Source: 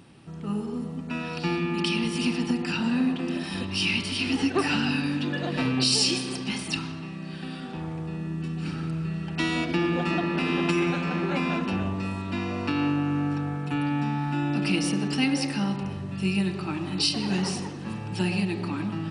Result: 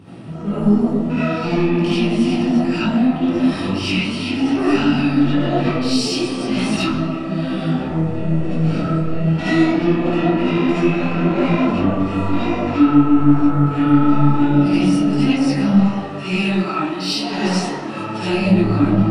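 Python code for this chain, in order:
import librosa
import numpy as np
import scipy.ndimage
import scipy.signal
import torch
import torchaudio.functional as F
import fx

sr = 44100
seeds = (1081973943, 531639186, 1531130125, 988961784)

y = fx.weighting(x, sr, curve='A', at=(15.71, 18.38))
y = fx.rider(y, sr, range_db=4, speed_s=0.5)
y = scipy.signal.sosfilt(scipy.signal.butter(2, 110.0, 'highpass', fs=sr, output='sos'), y)
y = fx.tilt_eq(y, sr, slope=-2.5)
y = 10.0 ** (-18.5 / 20.0) * np.tanh(y / 10.0 ** (-18.5 / 20.0))
y = fx.rev_freeverb(y, sr, rt60_s=0.48, hf_ratio=0.4, predelay_ms=30, drr_db=-9.0)
y = fx.detune_double(y, sr, cents=36)
y = y * 10.0 ** (4.5 / 20.0)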